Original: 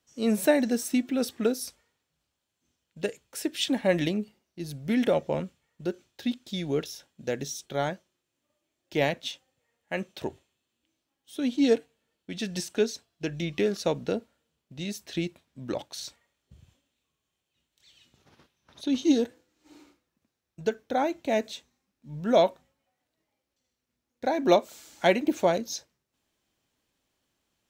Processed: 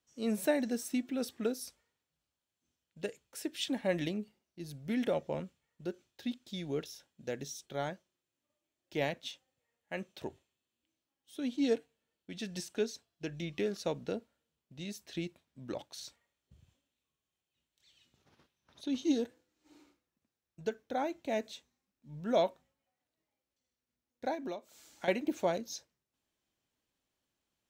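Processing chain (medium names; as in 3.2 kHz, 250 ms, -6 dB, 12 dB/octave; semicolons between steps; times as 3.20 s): 24.34–25.08 s: compression 8:1, threshold -30 dBFS, peak gain reduction 15 dB; trim -8 dB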